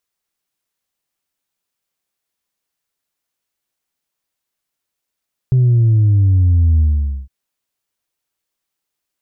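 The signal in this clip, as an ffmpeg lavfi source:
ffmpeg -f lavfi -i "aevalsrc='0.355*clip((1.76-t)/0.48,0,1)*tanh(1.12*sin(2*PI*130*1.76/log(65/130)*(exp(log(65/130)*t/1.76)-1)))/tanh(1.12)':duration=1.76:sample_rate=44100" out.wav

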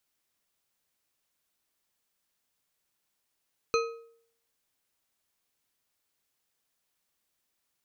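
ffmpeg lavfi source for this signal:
ffmpeg -f lavfi -i "aevalsrc='0.0794*pow(10,-3*t/0.62)*sin(2*PI*461*t)+0.0531*pow(10,-3*t/0.457)*sin(2*PI*1271*t)+0.0355*pow(10,-3*t/0.374)*sin(2*PI*2491.2*t)+0.0237*pow(10,-3*t/0.321)*sin(2*PI*4118.1*t)+0.0158*pow(10,-3*t/0.285)*sin(2*PI*6149.7*t)':duration=1.55:sample_rate=44100" out.wav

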